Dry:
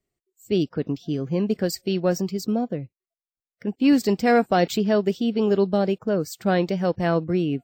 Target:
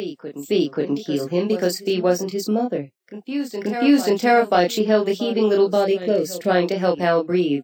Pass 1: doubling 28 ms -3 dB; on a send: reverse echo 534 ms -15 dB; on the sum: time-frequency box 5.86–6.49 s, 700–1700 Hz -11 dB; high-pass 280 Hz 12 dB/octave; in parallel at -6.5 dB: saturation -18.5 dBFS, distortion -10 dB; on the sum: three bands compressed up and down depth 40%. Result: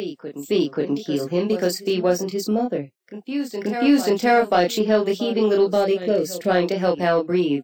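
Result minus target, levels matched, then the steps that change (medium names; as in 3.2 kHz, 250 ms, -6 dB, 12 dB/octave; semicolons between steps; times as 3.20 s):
saturation: distortion +10 dB
change: saturation -10 dBFS, distortion -20 dB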